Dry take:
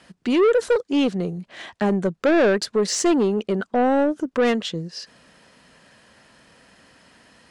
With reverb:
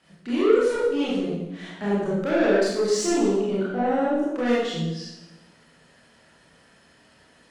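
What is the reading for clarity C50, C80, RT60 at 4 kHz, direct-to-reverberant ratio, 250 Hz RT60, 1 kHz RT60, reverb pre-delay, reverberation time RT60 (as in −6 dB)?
−1.5 dB, 2.0 dB, 0.85 s, −8.5 dB, 1.3 s, 0.90 s, 23 ms, 0.95 s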